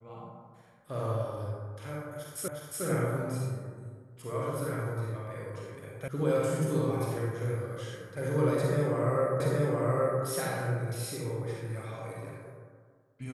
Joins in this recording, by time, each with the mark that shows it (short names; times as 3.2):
2.48 repeat of the last 0.36 s
6.08 sound cut off
9.4 repeat of the last 0.82 s